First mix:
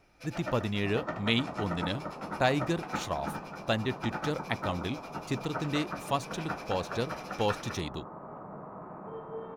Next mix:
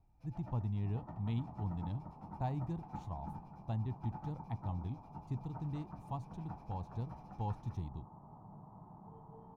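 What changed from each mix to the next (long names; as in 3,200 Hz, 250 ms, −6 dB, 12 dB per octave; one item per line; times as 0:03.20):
master: add drawn EQ curve 110 Hz 0 dB, 560 Hz −23 dB, 860 Hz −7 dB, 1,400 Hz −28 dB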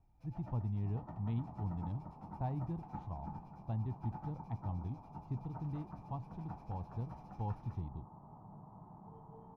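speech: add head-to-tape spacing loss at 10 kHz 27 dB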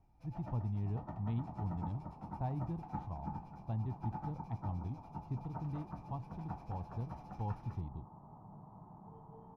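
first sound +4.0 dB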